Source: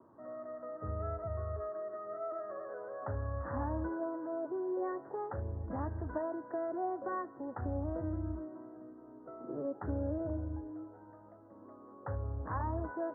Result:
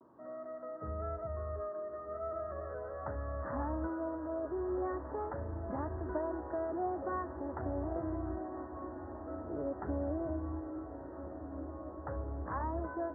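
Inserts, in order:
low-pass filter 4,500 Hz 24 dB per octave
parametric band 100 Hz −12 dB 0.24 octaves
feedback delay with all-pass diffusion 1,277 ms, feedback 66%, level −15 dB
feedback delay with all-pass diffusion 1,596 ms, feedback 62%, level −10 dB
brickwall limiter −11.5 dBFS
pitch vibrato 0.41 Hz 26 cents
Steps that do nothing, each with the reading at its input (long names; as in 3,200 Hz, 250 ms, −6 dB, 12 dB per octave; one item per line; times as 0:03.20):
low-pass filter 4,500 Hz: nothing at its input above 1,500 Hz
brickwall limiter −11.5 dBFS: peak of its input −23.5 dBFS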